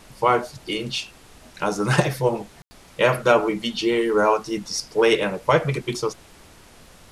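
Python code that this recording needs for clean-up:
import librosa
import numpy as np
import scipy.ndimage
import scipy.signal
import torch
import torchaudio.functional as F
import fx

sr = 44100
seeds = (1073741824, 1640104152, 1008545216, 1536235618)

y = fx.fix_declick_ar(x, sr, threshold=6.5)
y = fx.fix_ambience(y, sr, seeds[0], print_start_s=6.22, print_end_s=6.72, start_s=2.62, end_s=2.71)
y = fx.noise_reduce(y, sr, print_start_s=6.22, print_end_s=6.72, reduce_db=17.0)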